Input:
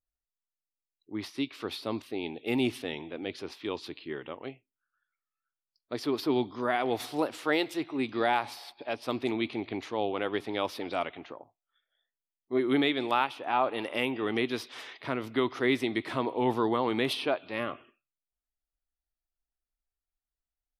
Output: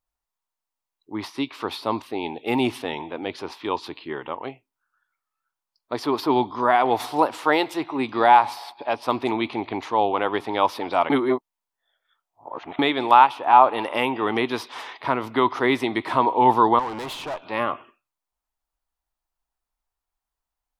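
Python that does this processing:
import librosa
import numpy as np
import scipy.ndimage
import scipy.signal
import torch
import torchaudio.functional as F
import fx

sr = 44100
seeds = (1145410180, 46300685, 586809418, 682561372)

y = fx.tube_stage(x, sr, drive_db=36.0, bias=0.7, at=(16.79, 17.45))
y = fx.edit(y, sr, fx.reverse_span(start_s=11.1, length_s=1.69), tone=tone)
y = fx.peak_eq(y, sr, hz=940.0, db=13.0, octaves=0.79)
y = y * 10.0 ** (4.5 / 20.0)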